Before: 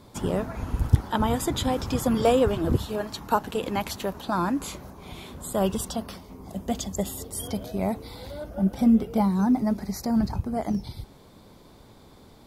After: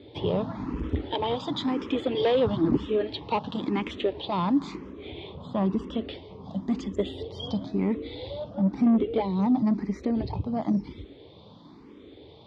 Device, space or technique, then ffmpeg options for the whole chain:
barber-pole phaser into a guitar amplifier: -filter_complex "[0:a]asettb=1/sr,asplit=3[a][b][c];[a]atrim=end=5.104[d];[b]atrim=start=5.1:end=5.93,asetpts=PTS-STARTPTS,afade=t=in:d=0.004:c=qsin,afade=t=out:st=0.826:d=0.004:c=qsin,aemphasis=mode=reproduction:type=75kf[e];[c]atrim=start=5.926[f];[d][e]acrossfade=d=0.004:c1=hsin:c2=qsin[g];[g][f]acrossfade=d=0.004:c1=qsin:c2=hsin,asplit=2[h][i];[i]afreqshift=0.99[j];[h][j]amix=inputs=2:normalize=1,asoftclip=type=tanh:threshold=-22dB,highpass=80,equalizer=f=300:t=q:w=4:g=8,equalizer=f=430:t=q:w=4:g=5,equalizer=f=710:t=q:w=4:g=-4,equalizer=f=1.5k:t=q:w=4:g=-9,equalizer=f=3.4k:t=q:w=4:g=6,lowpass=f=4k:w=0.5412,lowpass=f=4k:w=1.3066,asettb=1/sr,asplit=3[k][l][m];[k]atrim=end=1.144[n];[l]atrim=start=1.14:end=2.35,asetpts=PTS-STARTPTS,afade=t=in:d=0.004:c=qsin,afade=t=out:st=1.206:d=0.004:c=qsin,highpass=f=280:p=1[o];[m]atrim=start=2.346[p];[n][o]acrossfade=d=0.004:c1=hsin:c2=qsin[q];[q][p]acrossfade=d=0.004:c1=qsin:c2=hsin,volume=3.5dB"

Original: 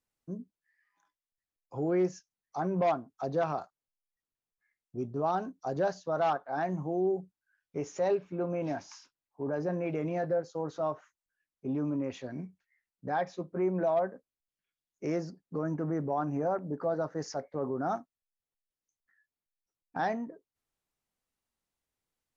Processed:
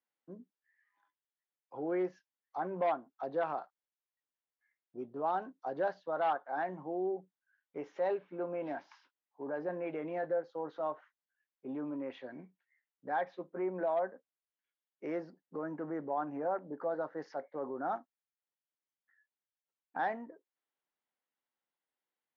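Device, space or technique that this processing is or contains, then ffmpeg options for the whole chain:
phone earpiece: -af "highpass=390,equalizer=f=420:t=q:w=4:g=-4,equalizer=f=650:t=q:w=4:g=-4,equalizer=f=1.2k:t=q:w=4:g=-4,equalizer=f=2.5k:t=q:w=4:g=-6,lowpass=f=3.2k:w=0.5412,lowpass=f=3.2k:w=1.3066"

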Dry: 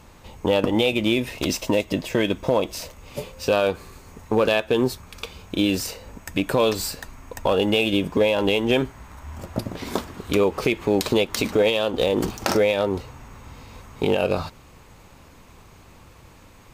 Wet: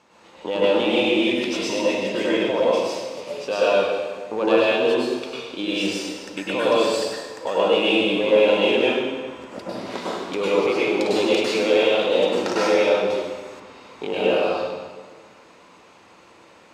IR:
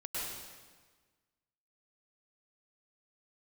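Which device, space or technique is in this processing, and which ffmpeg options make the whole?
supermarket ceiling speaker: -filter_complex "[0:a]highpass=290,lowpass=6.1k[a];[1:a]atrim=start_sample=2205[b];[a][b]afir=irnorm=-1:irlink=0,asettb=1/sr,asplit=3[c][d][e];[c]atrim=end=13.104[f];[d]atrim=start=13.1:end=13.6,asetpts=PTS-STARTPTS,afade=t=in:d=0.004:c=qsin,afade=t=out:st=0.496:d=0.004:c=qsin,highshelf=f=4.6k:g=10.5[g];[e]atrim=start=13.596[h];[f][g]acrossfade=d=0.004:c1=hsin:c2=qsin[i];[i][h]acrossfade=d=0.004:c1=qsin:c2=hsin"

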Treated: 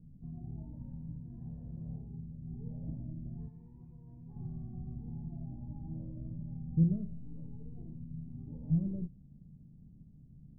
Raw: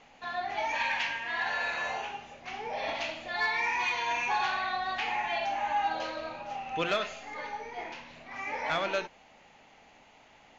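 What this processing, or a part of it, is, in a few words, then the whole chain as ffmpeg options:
the neighbour's flat through the wall: -filter_complex "[0:a]asettb=1/sr,asplit=3[a][b][c];[a]atrim=end=3.484[d];[b]atrim=start=3.48:end=4.36,asetpts=PTS-STARTPTS,afade=t=in:d=0.004:c=qsin,afade=t=out:st=0.876:d=0.004:c=qsin,tiltshelf=f=1.4k:g=-9[e];[c]atrim=start=4.356[f];[d][e]acrossfade=d=0.004:c1=hsin:c2=qsin[g];[g][f]acrossfade=d=0.004:c1=qsin:c2=hsin,lowpass=f=180:w=0.5412,lowpass=f=180:w=1.3066,equalizer=f=150:t=o:w=0.57:g=7,volume=14.5dB"

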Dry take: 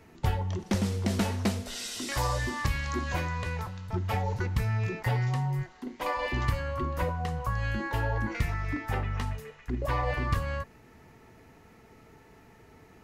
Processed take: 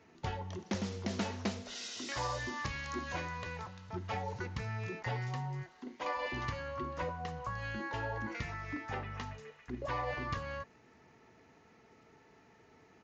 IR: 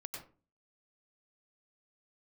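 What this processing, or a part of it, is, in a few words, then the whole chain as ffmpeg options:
Bluetooth headset: -af "highpass=f=190:p=1,lowpass=12k,aresample=16000,aresample=44100,volume=-5.5dB" -ar 16000 -c:a sbc -b:a 64k

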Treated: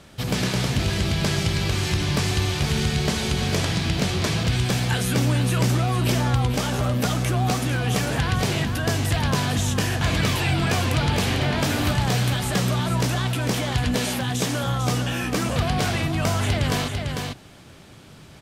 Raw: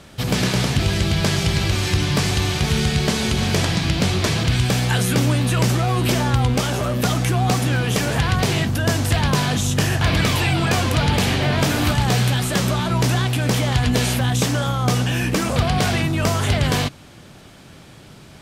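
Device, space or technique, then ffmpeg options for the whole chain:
ducked delay: -filter_complex "[0:a]asplit=3[a][b][c];[b]adelay=448,volume=-5dB[d];[c]apad=whole_len=831969[e];[d][e]sidechaincompress=threshold=-21dB:ratio=8:attack=40:release=157[f];[a][f]amix=inputs=2:normalize=0,asettb=1/sr,asplit=3[g][h][i];[g]atrim=end=13.954[j];[h]atrim=start=13.95:end=14.63,asetpts=PTS-STARTPTS,afade=t=in:d=0.004:c=qsin,afade=t=out:st=0.676:d=0.004:c=qsin,highpass=110[k];[i]atrim=start=14.626[l];[j][k]acrossfade=d=0.004:c1=hsin:c2=qsin[m];[m][l]acrossfade=d=0.004:c1=qsin:c2=hsin,volume=-4dB"

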